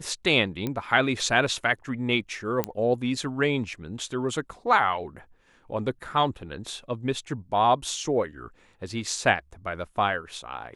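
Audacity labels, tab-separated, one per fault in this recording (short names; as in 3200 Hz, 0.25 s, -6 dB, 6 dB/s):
0.670000	0.670000	pop -16 dBFS
2.640000	2.640000	pop -10 dBFS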